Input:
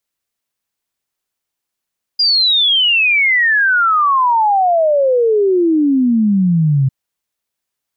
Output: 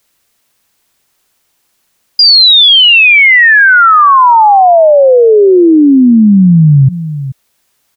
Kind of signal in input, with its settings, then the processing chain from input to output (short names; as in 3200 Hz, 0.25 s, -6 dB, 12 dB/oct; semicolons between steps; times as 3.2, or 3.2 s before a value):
log sweep 4900 Hz -> 130 Hz 4.70 s -9.5 dBFS
outdoor echo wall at 74 m, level -25 dB; maximiser +20.5 dB